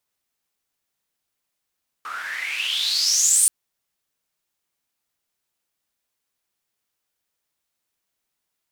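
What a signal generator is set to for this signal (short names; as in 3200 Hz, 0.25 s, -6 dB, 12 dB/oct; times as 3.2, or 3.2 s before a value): swept filtered noise white, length 1.43 s bandpass, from 1200 Hz, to 9400 Hz, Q 9.4, exponential, gain ramp +10 dB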